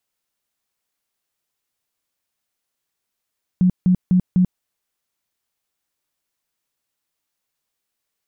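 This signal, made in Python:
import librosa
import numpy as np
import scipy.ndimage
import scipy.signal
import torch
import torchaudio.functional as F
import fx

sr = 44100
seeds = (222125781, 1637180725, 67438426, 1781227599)

y = fx.tone_burst(sr, hz=182.0, cycles=16, every_s=0.25, bursts=4, level_db=-11.0)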